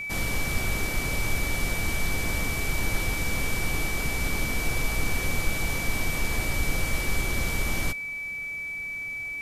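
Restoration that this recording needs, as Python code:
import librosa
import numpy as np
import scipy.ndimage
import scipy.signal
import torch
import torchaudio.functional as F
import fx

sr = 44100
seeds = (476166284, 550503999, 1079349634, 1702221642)

y = fx.notch(x, sr, hz=2300.0, q=30.0)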